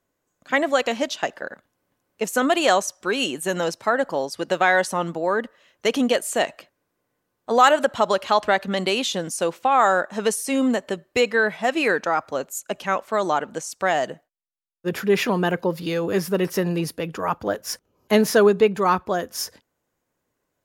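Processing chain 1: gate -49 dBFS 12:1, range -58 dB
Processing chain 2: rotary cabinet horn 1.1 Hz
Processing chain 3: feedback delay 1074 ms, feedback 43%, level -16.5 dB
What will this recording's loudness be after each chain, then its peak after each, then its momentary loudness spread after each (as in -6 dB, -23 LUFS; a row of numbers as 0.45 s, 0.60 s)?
-22.0 LUFS, -24.5 LUFS, -22.0 LUFS; -4.0 dBFS, -6.5 dBFS, -3.5 dBFS; 11 LU, 11 LU, 17 LU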